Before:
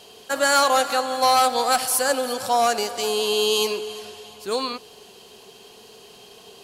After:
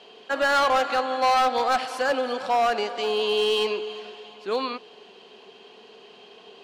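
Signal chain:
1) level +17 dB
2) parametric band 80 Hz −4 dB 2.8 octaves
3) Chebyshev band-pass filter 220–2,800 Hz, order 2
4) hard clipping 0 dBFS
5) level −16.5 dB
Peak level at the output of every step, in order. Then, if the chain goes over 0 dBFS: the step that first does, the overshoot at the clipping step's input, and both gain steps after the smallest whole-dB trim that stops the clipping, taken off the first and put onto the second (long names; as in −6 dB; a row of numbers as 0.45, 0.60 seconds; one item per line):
+10.0, +10.0, +7.5, 0.0, −16.5 dBFS
step 1, 7.5 dB
step 1 +9 dB, step 5 −8.5 dB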